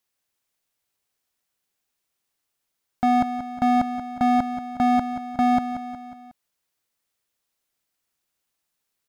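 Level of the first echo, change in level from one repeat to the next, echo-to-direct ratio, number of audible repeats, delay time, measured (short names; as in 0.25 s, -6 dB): -10.0 dB, -5.5 dB, -8.5 dB, 4, 0.182 s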